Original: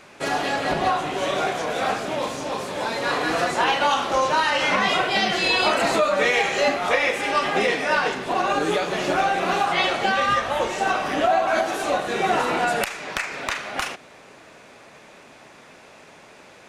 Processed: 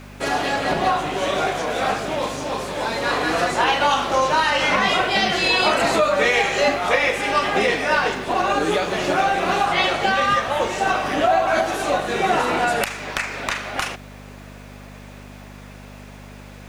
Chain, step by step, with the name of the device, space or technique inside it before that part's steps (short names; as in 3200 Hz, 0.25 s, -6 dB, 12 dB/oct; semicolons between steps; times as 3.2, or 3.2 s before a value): video cassette with head-switching buzz (buzz 50 Hz, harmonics 5, -43 dBFS -2 dB/oct; white noise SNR 39 dB); gain +2 dB